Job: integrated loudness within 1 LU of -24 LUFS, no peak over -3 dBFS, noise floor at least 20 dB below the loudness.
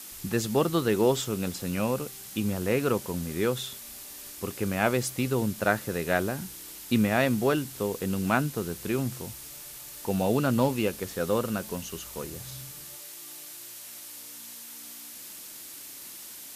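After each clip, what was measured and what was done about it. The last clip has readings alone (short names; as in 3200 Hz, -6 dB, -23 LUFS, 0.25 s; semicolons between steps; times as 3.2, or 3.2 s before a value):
noise floor -44 dBFS; noise floor target -49 dBFS; loudness -28.5 LUFS; peak -8.0 dBFS; loudness target -24.0 LUFS
-> denoiser 6 dB, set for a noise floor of -44 dBFS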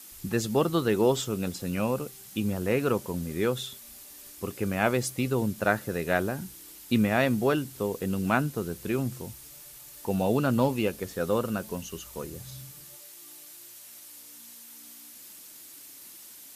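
noise floor -48 dBFS; noise floor target -49 dBFS
-> denoiser 6 dB, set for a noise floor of -48 dBFS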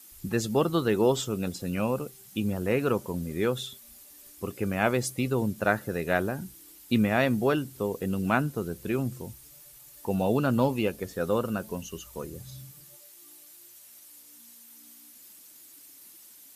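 noise floor -52 dBFS; loudness -28.5 LUFS; peak -8.0 dBFS; loudness target -24.0 LUFS
-> gain +4.5 dB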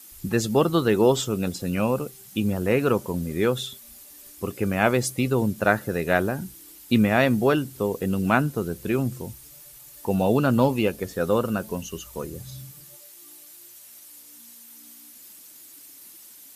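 loudness -24.0 LUFS; peak -3.5 dBFS; noise floor -47 dBFS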